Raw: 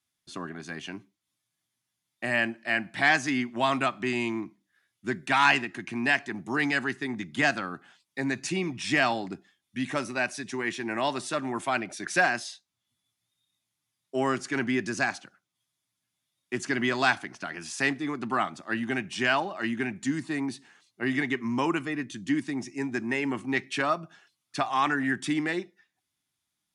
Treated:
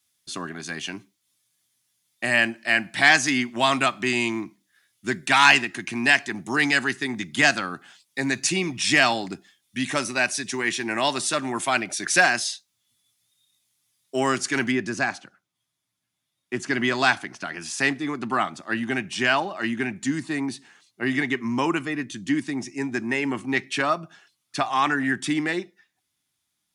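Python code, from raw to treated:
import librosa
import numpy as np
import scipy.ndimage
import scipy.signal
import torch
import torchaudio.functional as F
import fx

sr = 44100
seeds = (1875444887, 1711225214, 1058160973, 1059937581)

y = fx.high_shelf(x, sr, hz=2800.0, db=fx.steps((0.0, 10.5), (14.71, -2.5), (16.69, 3.0)))
y = y * librosa.db_to_amplitude(3.0)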